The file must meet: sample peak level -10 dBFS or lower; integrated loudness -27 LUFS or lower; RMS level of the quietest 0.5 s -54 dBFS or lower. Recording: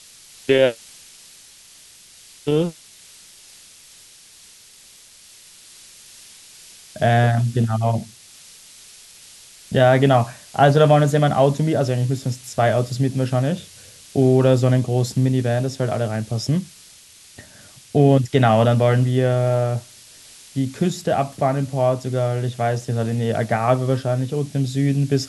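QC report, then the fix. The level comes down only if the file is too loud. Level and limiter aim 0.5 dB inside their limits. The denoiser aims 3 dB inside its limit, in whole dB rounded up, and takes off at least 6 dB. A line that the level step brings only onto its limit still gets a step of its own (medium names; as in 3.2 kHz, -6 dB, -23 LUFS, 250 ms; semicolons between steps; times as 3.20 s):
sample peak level -3.0 dBFS: fail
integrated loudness -19.5 LUFS: fail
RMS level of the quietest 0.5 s -47 dBFS: fail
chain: trim -8 dB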